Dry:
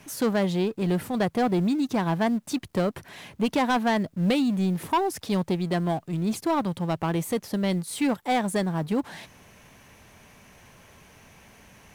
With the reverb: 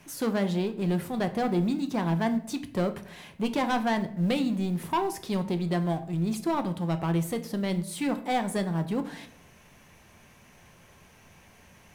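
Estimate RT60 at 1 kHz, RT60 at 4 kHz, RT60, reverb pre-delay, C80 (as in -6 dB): 0.55 s, 0.40 s, 0.65 s, 6 ms, 17.0 dB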